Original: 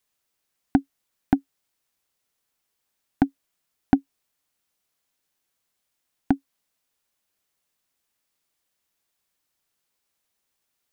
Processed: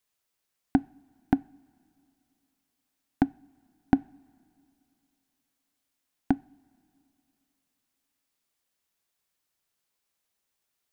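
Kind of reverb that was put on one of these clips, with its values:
coupled-rooms reverb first 0.41 s, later 2.8 s, from −17 dB, DRR 20 dB
level −3 dB

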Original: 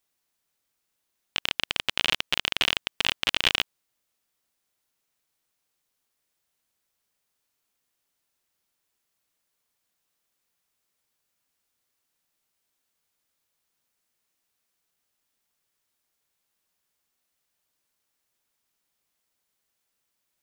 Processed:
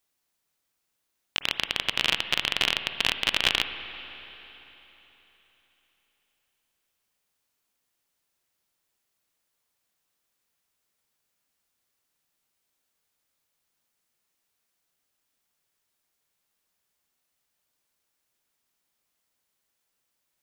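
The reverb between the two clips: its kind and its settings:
spring reverb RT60 3.7 s, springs 48/55 ms, chirp 80 ms, DRR 9 dB

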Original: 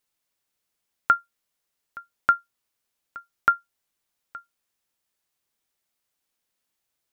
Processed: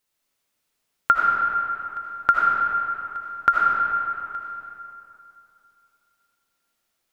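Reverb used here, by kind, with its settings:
comb and all-pass reverb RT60 2.9 s, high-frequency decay 0.65×, pre-delay 40 ms, DRR −3.5 dB
level +1.5 dB

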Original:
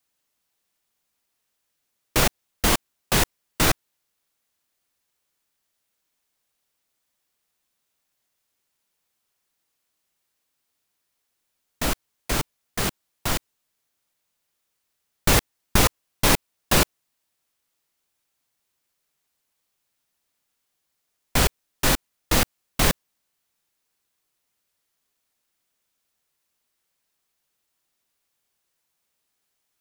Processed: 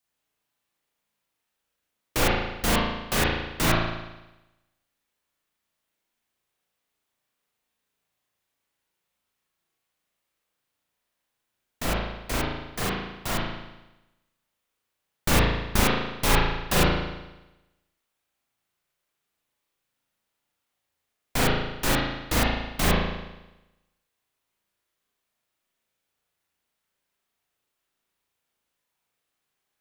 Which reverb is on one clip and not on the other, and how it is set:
spring reverb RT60 1 s, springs 36 ms, chirp 25 ms, DRR −4.5 dB
level −6 dB

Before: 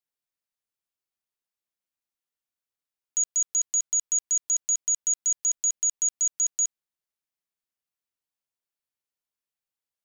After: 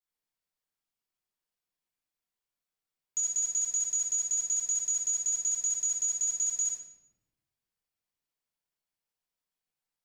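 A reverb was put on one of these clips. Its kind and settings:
rectangular room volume 400 cubic metres, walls mixed, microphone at 4 metres
level −9 dB

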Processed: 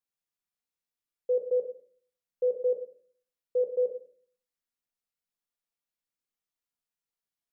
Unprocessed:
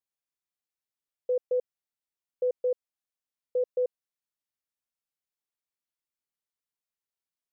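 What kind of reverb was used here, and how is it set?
rectangular room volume 460 cubic metres, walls furnished, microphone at 1.8 metres
level −3 dB

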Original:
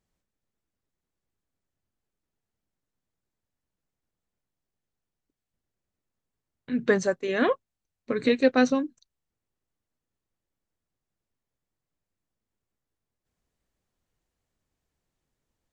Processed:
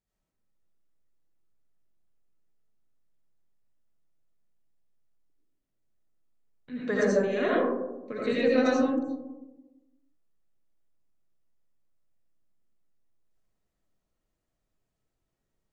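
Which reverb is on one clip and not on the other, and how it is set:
comb and all-pass reverb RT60 1.1 s, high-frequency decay 0.25×, pre-delay 45 ms, DRR −7 dB
level −9.5 dB

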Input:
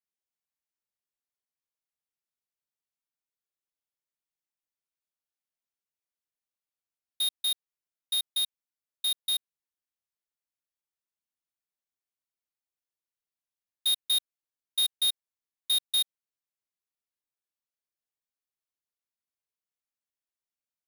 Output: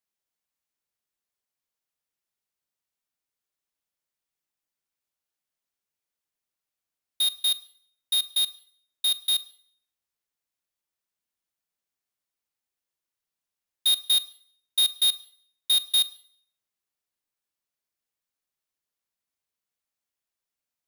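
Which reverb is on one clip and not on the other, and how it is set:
four-comb reverb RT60 0.58 s, combs from 32 ms, DRR 16.5 dB
level +4.5 dB

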